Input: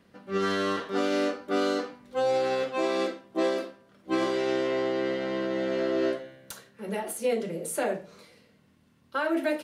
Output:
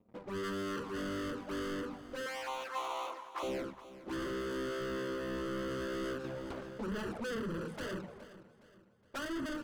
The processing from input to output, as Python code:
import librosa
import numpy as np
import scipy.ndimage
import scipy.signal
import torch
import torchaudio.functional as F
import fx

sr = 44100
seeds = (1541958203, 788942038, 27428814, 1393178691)

p1 = fx.wiener(x, sr, points=25)
p2 = scipy.signal.sosfilt(scipy.signal.butter(2, 1700.0, 'lowpass', fs=sr, output='sos'), p1)
p3 = fx.leveller(p2, sr, passes=3)
p4 = 10.0 ** (-34.0 / 20.0) * np.tanh(p3 / 10.0 ** (-34.0 / 20.0))
p5 = fx.highpass_res(p4, sr, hz=1000.0, q=4.9, at=(2.26, 3.43))
p6 = fx.env_flanger(p5, sr, rest_ms=10.0, full_db=-32.0)
p7 = p6 + fx.echo_feedback(p6, sr, ms=416, feedback_pct=41, wet_db=-16.0, dry=0)
y = fx.env_flatten(p7, sr, amount_pct=50, at=(6.24, 7.41))